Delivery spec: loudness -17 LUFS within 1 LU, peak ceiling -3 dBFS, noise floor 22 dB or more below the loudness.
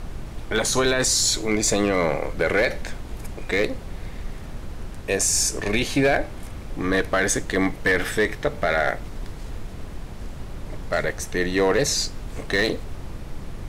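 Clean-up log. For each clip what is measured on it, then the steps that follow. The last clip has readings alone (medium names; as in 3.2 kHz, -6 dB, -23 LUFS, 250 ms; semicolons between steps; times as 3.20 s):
clipped samples 0.3%; clipping level -12.0 dBFS; noise floor -36 dBFS; noise floor target -45 dBFS; loudness -22.5 LUFS; peak level -12.0 dBFS; loudness target -17.0 LUFS
-> clip repair -12 dBFS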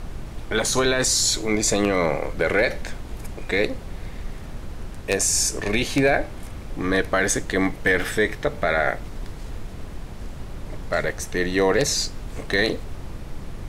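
clipped samples 0.0%; noise floor -36 dBFS; noise floor target -44 dBFS
-> noise print and reduce 8 dB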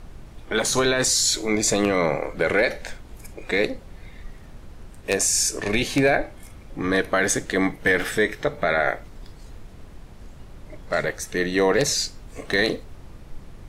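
noise floor -44 dBFS; loudness -22.0 LUFS; peak level -3.5 dBFS; loudness target -17.0 LUFS
-> trim +5 dB; peak limiter -3 dBFS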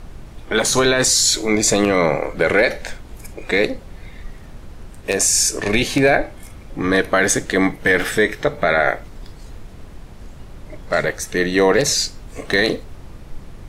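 loudness -17.0 LUFS; peak level -3.0 dBFS; noise floor -39 dBFS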